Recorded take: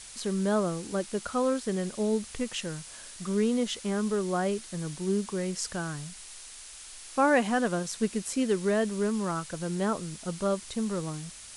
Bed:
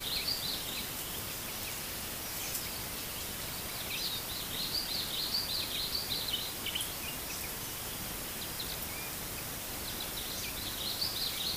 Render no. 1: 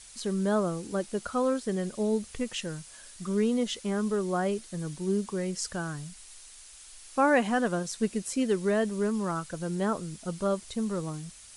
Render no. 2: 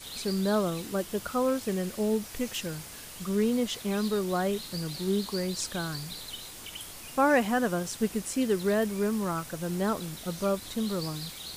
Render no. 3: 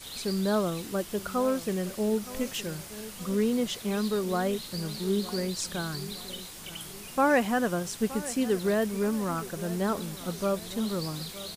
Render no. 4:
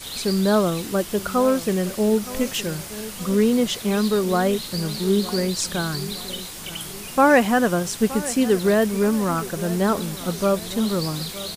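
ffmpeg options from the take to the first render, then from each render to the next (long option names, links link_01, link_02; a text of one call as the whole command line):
ffmpeg -i in.wav -af "afftdn=noise_reduction=6:noise_floor=-46" out.wav
ffmpeg -i in.wav -i bed.wav -filter_complex "[1:a]volume=-6.5dB[link_01];[0:a][link_01]amix=inputs=2:normalize=0" out.wav
ffmpeg -i in.wav -filter_complex "[0:a]asplit=2[link_01][link_02];[link_02]adelay=918,lowpass=frequency=2000:poles=1,volume=-15.5dB,asplit=2[link_03][link_04];[link_04]adelay=918,lowpass=frequency=2000:poles=1,volume=0.46,asplit=2[link_05][link_06];[link_06]adelay=918,lowpass=frequency=2000:poles=1,volume=0.46,asplit=2[link_07][link_08];[link_08]adelay=918,lowpass=frequency=2000:poles=1,volume=0.46[link_09];[link_01][link_03][link_05][link_07][link_09]amix=inputs=5:normalize=0" out.wav
ffmpeg -i in.wav -af "volume=8dB" out.wav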